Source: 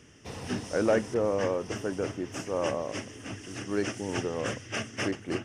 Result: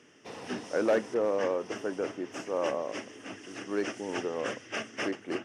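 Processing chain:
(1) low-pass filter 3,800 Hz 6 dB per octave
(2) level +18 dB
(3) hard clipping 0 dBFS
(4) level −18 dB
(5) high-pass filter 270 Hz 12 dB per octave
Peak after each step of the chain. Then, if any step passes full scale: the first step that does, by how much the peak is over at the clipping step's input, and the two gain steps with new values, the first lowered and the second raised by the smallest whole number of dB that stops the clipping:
−14.5, +3.5, 0.0, −18.0, −14.5 dBFS
step 2, 3.5 dB
step 2 +14 dB, step 4 −14 dB

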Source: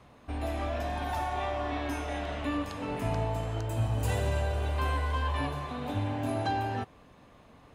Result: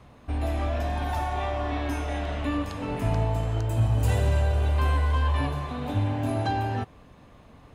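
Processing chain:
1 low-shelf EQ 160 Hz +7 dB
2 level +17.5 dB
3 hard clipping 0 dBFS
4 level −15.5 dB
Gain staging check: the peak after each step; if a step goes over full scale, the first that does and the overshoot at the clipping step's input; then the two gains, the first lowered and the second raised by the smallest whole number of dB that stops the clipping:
−14.0, +3.5, 0.0, −15.5 dBFS
step 2, 3.5 dB
step 2 +13.5 dB, step 4 −11.5 dB

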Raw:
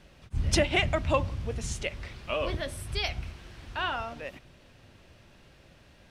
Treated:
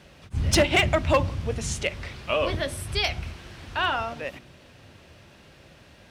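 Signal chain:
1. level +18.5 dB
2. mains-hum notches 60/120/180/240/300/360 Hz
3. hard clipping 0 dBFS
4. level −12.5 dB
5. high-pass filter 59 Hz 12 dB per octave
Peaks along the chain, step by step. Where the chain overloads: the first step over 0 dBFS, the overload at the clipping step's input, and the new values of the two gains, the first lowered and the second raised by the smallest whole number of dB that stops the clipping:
+7.0, +7.5, 0.0, −12.5, −8.5 dBFS
step 1, 7.5 dB
step 1 +10.5 dB, step 4 −4.5 dB

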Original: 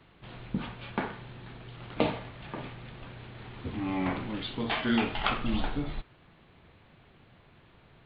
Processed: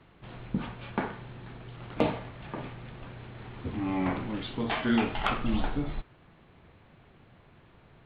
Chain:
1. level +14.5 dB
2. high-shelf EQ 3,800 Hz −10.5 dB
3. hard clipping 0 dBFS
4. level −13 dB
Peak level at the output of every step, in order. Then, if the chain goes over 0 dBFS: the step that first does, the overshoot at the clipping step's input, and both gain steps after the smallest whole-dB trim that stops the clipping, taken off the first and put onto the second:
+4.5, +3.5, 0.0, −13.0 dBFS
step 1, 3.5 dB
step 1 +10.5 dB, step 4 −9 dB

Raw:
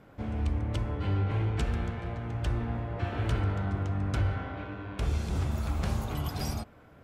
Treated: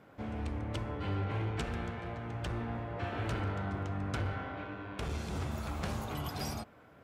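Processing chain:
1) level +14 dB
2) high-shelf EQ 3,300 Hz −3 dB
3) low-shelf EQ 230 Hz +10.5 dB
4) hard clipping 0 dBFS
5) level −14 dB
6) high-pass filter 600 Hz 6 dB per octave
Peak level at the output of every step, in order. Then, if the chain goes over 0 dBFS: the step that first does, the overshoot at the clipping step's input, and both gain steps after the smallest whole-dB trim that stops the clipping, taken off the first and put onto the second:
−3.5, −4.0, +4.5, 0.0, −14.0, −22.0 dBFS
step 3, 4.5 dB
step 1 +9 dB, step 5 −9 dB

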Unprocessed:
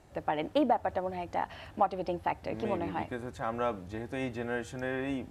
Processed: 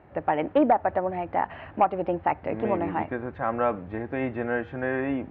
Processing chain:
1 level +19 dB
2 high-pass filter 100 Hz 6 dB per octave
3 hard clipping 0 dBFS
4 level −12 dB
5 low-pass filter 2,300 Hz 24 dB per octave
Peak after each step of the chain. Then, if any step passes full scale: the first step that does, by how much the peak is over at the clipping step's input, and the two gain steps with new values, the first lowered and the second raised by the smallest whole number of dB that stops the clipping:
+4.5, +4.5, 0.0, −12.0, −11.0 dBFS
step 1, 4.5 dB
step 1 +14 dB, step 4 −7 dB

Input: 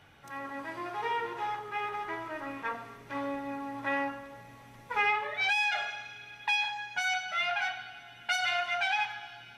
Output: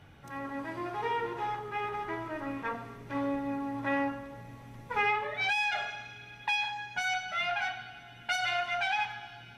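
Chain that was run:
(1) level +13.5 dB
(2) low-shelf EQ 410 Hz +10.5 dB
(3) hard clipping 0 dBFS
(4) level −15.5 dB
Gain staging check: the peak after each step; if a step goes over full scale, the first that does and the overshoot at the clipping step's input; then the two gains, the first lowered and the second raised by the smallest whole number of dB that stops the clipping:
−3.0, −2.5, −2.5, −18.0 dBFS
no step passes full scale

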